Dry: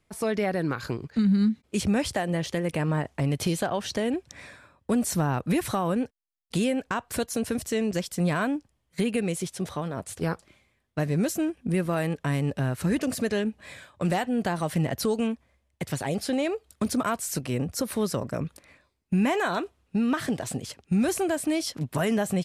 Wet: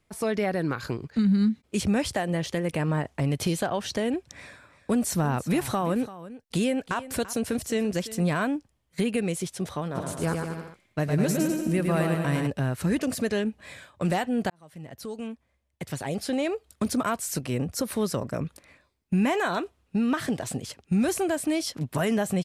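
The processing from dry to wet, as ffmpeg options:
ffmpeg -i in.wav -filter_complex "[0:a]asettb=1/sr,asplit=3[link_01][link_02][link_03];[link_01]atrim=end=4.334[link_04];[link_02]atrim=start=4.33:end=8.24,asetpts=PTS-STARTPTS,afade=type=in:duration=0.004:curve=qsin,afade=type=out:start_time=3.906:duration=0.004:curve=qsin,aecho=1:1:339:0.168,atrim=end_sample=172431[link_05];[link_03]atrim=start=8.236[link_06];[link_04][link_05]acrossfade=duration=0.004:curve1=hsin:curve2=qsin[link_07];[link_07][link_06]acrossfade=duration=0.004:curve1=qsin:curve2=hsin,asplit=3[link_08][link_09][link_10];[link_08]afade=type=out:start_time=9.94:duration=0.02[link_11];[link_09]aecho=1:1:110|203.5|283|350.5|407.9:0.631|0.398|0.251|0.158|0.1,afade=type=in:start_time=9.94:duration=0.02,afade=type=out:start_time=12.46:duration=0.02[link_12];[link_10]afade=type=in:start_time=12.46:duration=0.02[link_13];[link_11][link_12][link_13]amix=inputs=3:normalize=0,asplit=2[link_14][link_15];[link_14]atrim=end=14.5,asetpts=PTS-STARTPTS,afade=type=out:start_time=14.496:duration=0.004:curve=hsin[link_16];[link_15]atrim=start=14.5,asetpts=PTS-STARTPTS,afade=type=in:duration=2.02[link_17];[link_16][link_17]concat=n=2:v=0:a=1" out.wav

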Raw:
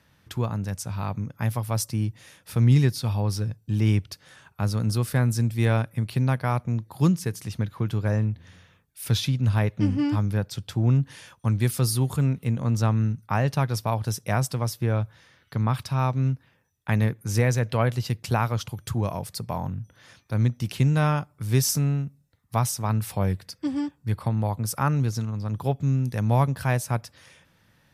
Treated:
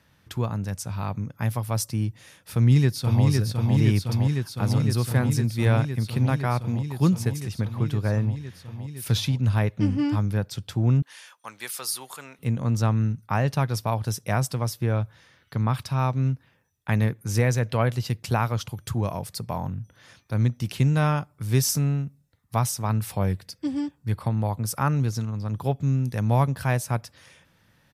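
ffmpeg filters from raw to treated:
ffmpeg -i in.wav -filter_complex "[0:a]asplit=2[link_01][link_02];[link_02]afade=type=in:start_time=2.53:duration=0.01,afade=type=out:start_time=3.25:duration=0.01,aecho=0:1:510|1020|1530|2040|2550|3060|3570|4080|4590|5100|5610|6120:0.707946|0.601754|0.511491|0.434767|0.369552|0.314119|0.267001|0.226951|0.192909|0.163972|0.139376|0.11847[link_03];[link_01][link_03]amix=inputs=2:normalize=0,asettb=1/sr,asplit=3[link_04][link_05][link_06];[link_04]atrim=end=11.024[link_07];[link_05]atrim=start=11.02:end=12.39,asetpts=PTS-STARTPTS,afade=type=in:duration=0.004:curve=qsin,afade=type=out:start_time=1.366:duration=0.004:curve=qsin,highpass=850[link_08];[link_06]atrim=start=12.386[link_09];[link_07][link_08]acrossfade=duration=0.004:curve1=hsin:curve2=qsin[link_10];[link_10][link_09]acrossfade=duration=0.004:curve1=qsin:curve2=hsin,asettb=1/sr,asplit=3[link_11][link_12][link_13];[link_11]atrim=end=23.414[link_14];[link_12]atrim=start=23.41:end=23.94,asetpts=PTS-STARTPTS,afade=type=in:duration=0.004:curve=qsin,afade=type=out:start_time=0.526:duration=0.004:curve=qsin,equalizer=frequency=1200:width_type=o:width=1.2:gain=-5[link_15];[link_13]atrim=start=23.936[link_16];[link_14][link_15]acrossfade=duration=0.004:curve1=hsin:curve2=qsin[link_17];[link_17][link_16]acrossfade=duration=0.004:curve1=qsin:curve2=hsin" out.wav

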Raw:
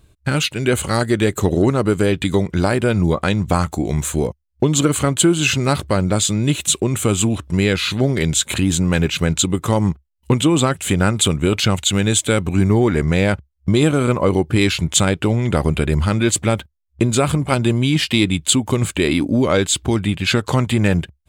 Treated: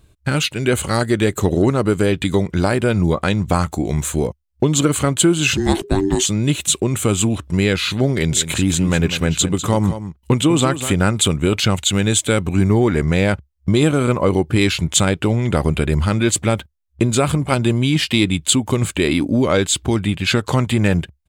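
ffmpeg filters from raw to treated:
ffmpeg -i in.wav -filter_complex "[0:a]asettb=1/sr,asplit=3[link_01][link_02][link_03];[link_01]atrim=end=5.574[link_04];[link_02]atrim=start=5.57:end=6.26,asetpts=PTS-STARTPTS,afade=type=in:duration=0.004:curve=qsin,afade=type=out:start_time=0.686:duration=0.004:curve=qsin,afreqshift=-480[link_05];[link_03]atrim=start=6.256[link_06];[link_04][link_05]acrossfade=duration=0.004:curve1=hsin:curve2=qsin[link_07];[link_07][link_06]acrossfade=duration=0.004:curve1=qsin:curve2=hsin,asplit=3[link_08][link_09][link_10];[link_08]afade=type=out:start_time=8.3:duration=0.02[link_11];[link_09]aecho=1:1:198:0.266,afade=type=in:start_time=8.3:duration=0.02,afade=type=out:start_time=11:duration=0.02[link_12];[link_10]afade=type=in:start_time=11:duration=0.02[link_13];[link_11][link_12][link_13]amix=inputs=3:normalize=0" out.wav

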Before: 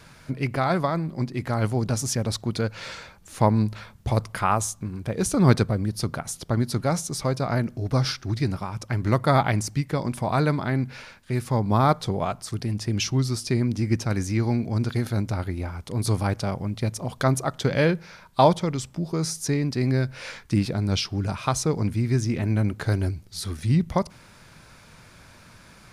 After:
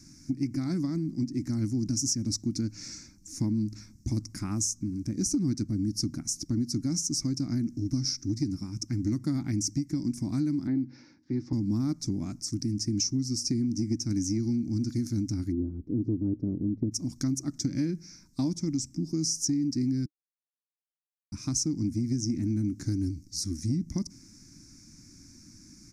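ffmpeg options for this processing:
ffmpeg -i in.wav -filter_complex "[0:a]asettb=1/sr,asplit=3[link_01][link_02][link_03];[link_01]atrim=end=10.674[link_04];[link_02]atrim=start=10.67:end=11.53,asetpts=PTS-STARTPTS,afade=type=in:duration=0.004:curve=qsin,afade=type=out:start_time=0.856:duration=0.004:curve=qsin,highpass=130,equalizer=frequency=210:width_type=q:width=4:gain=-7,equalizer=frequency=310:width_type=q:width=4:gain=5,equalizer=frequency=510:width_type=q:width=4:gain=9,equalizer=frequency=850:width_type=q:width=4:gain=9,equalizer=frequency=2500:width_type=q:width=4:gain=-6,lowpass=frequency=3800:width=0.5412,lowpass=frequency=3800:width=1.3066[link_05];[link_03]atrim=start=11.526[link_06];[link_04][link_05]acrossfade=duration=0.004:curve1=hsin:curve2=qsin[link_07];[link_07][link_06]acrossfade=duration=0.004:curve1=qsin:curve2=hsin,asplit=3[link_08][link_09][link_10];[link_08]afade=type=out:start_time=15.51:duration=0.02[link_11];[link_09]lowpass=frequency=450:width_type=q:width=5.4,afade=type=in:start_time=15.51:duration=0.02,afade=type=out:start_time=16.91:duration=0.02[link_12];[link_10]afade=type=in:start_time=16.91:duration=0.02[link_13];[link_11][link_12][link_13]amix=inputs=3:normalize=0,asplit=3[link_14][link_15][link_16];[link_14]atrim=end=20.06,asetpts=PTS-STARTPTS,afade=type=out:start_time=20.056:duration=0.004:curve=hsin[link_17];[link_15]atrim=start=20.06:end=21.32,asetpts=PTS-STARTPTS,volume=0[link_18];[link_16]atrim=start=21.32,asetpts=PTS-STARTPTS,afade=type=in:duration=0.004:curve=hsin[link_19];[link_17][link_18][link_19]concat=n=3:v=0:a=1,firequalizer=gain_entry='entry(160,0);entry(300,13);entry(440,-21);entry(900,-21);entry(2200,-10);entry(3100,-23);entry(5500,13);entry(9900,-3)':delay=0.05:min_phase=1,acompressor=threshold=-21dB:ratio=6,volume=-4dB" out.wav

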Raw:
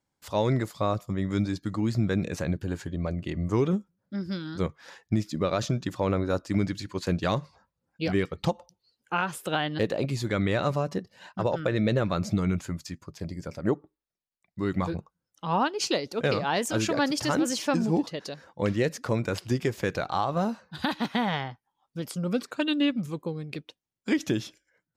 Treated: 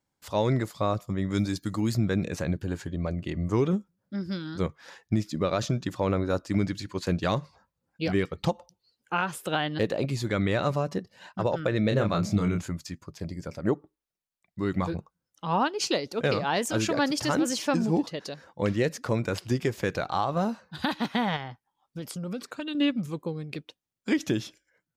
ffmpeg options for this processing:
ffmpeg -i in.wav -filter_complex "[0:a]asettb=1/sr,asplit=3[link_01][link_02][link_03];[link_01]atrim=end=1.344[link_04];[link_02]atrim=start=1.34:end=1.97,asetpts=PTS-STARTPTS,afade=type=in:duration=0.004:curve=qsin,afade=type=out:start_time=0.626:duration=0.004:curve=qsin,aemphasis=mode=production:type=50kf[link_05];[link_03]atrim=start=1.966[link_06];[link_04][link_05]acrossfade=duration=0.004:curve1=hsin:curve2=qsin[link_07];[link_07][link_06]acrossfade=duration=0.004:curve1=qsin:curve2=hsin,asplit=3[link_08][link_09][link_10];[link_08]afade=type=out:start_time=11.9:duration=0.02[link_11];[link_09]asplit=2[link_12][link_13];[link_13]adelay=29,volume=-5dB[link_14];[link_12][link_14]amix=inputs=2:normalize=0,afade=type=in:start_time=11.9:duration=0.02,afade=type=out:start_time=12.67:duration=0.02[link_15];[link_10]afade=type=in:start_time=12.67:duration=0.02[link_16];[link_11][link_15][link_16]amix=inputs=3:normalize=0,asettb=1/sr,asplit=3[link_17][link_18][link_19];[link_17]atrim=end=21.364[link_20];[link_18]atrim=start=21.36:end=22.75,asetpts=PTS-STARTPTS,afade=type=in:duration=0.004:curve=qsin,afade=type=out:start_time=1.386:duration=0.004:curve=qsin,acompressor=threshold=-32dB:ratio=3:attack=3.2:release=140:knee=1:detection=peak[link_21];[link_19]atrim=start=22.746[link_22];[link_20][link_21]acrossfade=duration=0.004:curve1=hsin:curve2=qsin[link_23];[link_23][link_22]acrossfade=duration=0.004:curve1=qsin:curve2=hsin" out.wav

